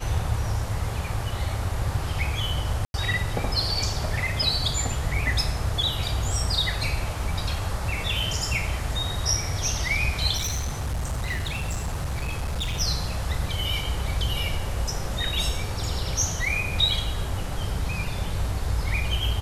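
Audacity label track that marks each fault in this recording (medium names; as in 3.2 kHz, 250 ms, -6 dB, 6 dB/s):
2.850000	2.940000	dropout 91 ms
10.360000	12.810000	clipped -24 dBFS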